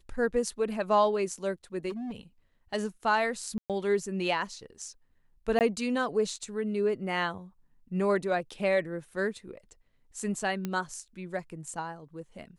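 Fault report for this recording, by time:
0:01.89–0:02.17: clipping −33.5 dBFS
0:03.58–0:03.70: drop-out 117 ms
0:05.59–0:05.61: drop-out 18 ms
0:10.65: click −19 dBFS

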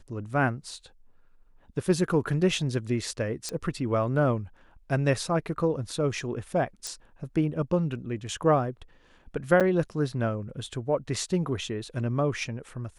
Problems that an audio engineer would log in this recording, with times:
0:03.49: click −18 dBFS
0:06.87: click
0:09.60–0:09.61: drop-out 7.1 ms

